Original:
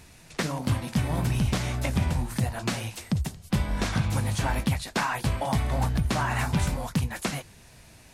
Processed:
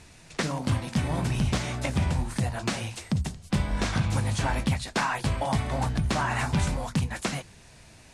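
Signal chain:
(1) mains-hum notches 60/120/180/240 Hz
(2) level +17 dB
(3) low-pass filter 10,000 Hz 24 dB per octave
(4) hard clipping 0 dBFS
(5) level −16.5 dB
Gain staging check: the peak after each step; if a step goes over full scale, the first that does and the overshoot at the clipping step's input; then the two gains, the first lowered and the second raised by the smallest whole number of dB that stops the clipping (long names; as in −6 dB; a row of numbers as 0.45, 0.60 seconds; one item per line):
−13.0, +4.0, +3.5, 0.0, −16.5 dBFS
step 2, 3.5 dB
step 2 +13 dB, step 5 −12.5 dB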